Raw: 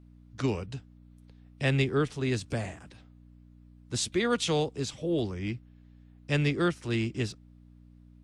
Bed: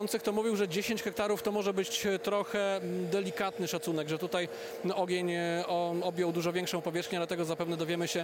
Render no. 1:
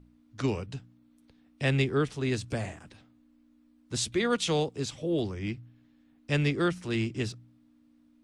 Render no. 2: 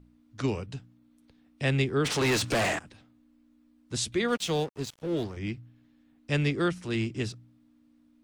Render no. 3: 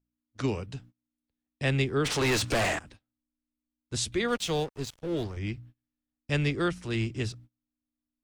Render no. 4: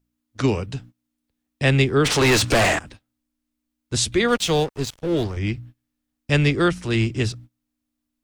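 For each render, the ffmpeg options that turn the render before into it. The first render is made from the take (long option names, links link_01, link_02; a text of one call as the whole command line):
ffmpeg -i in.wav -af "bandreject=frequency=60:width_type=h:width=4,bandreject=frequency=120:width_type=h:width=4,bandreject=frequency=180:width_type=h:width=4" out.wav
ffmpeg -i in.wav -filter_complex "[0:a]asplit=3[link_01][link_02][link_03];[link_01]afade=type=out:start_time=2.04:duration=0.02[link_04];[link_02]asplit=2[link_05][link_06];[link_06]highpass=frequency=720:poles=1,volume=30dB,asoftclip=type=tanh:threshold=-18.5dB[link_07];[link_05][link_07]amix=inputs=2:normalize=0,lowpass=frequency=5500:poles=1,volume=-6dB,afade=type=in:start_time=2.04:duration=0.02,afade=type=out:start_time=2.78:duration=0.02[link_08];[link_03]afade=type=in:start_time=2.78:duration=0.02[link_09];[link_04][link_08][link_09]amix=inputs=3:normalize=0,asettb=1/sr,asplit=3[link_10][link_11][link_12];[link_10]atrim=end=4.284[link_13];[link_11]atrim=start=4.28:end=5.37,asetpts=PTS-STARTPTS,afade=type=in:duration=0.004:curve=qsin,afade=type=out:start_time=1.086:duration=0.004:curve=qsin,aeval=exprs='sgn(val(0))*max(abs(val(0))-0.0075,0)':channel_layout=same[link_14];[link_12]atrim=start=5.366[link_15];[link_13][link_14]acrossfade=duration=0.004:curve1=hsin:curve2=qsin[link_16];[link_16][link_15]acrossfade=duration=0.004:curve1=qsin:curve2=hsin" out.wav
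ffmpeg -i in.wav -af "agate=range=-26dB:threshold=-49dB:ratio=16:detection=peak,asubboost=boost=3:cutoff=91" out.wav
ffmpeg -i in.wav -af "volume=9dB" out.wav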